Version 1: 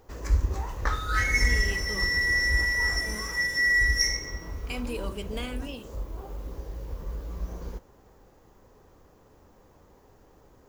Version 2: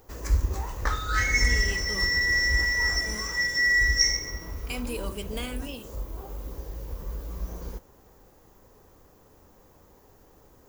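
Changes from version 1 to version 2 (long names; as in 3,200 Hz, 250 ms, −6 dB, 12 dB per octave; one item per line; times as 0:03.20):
second sound: add Butterworth low-pass 7,900 Hz
master: add high-shelf EQ 8,200 Hz +12 dB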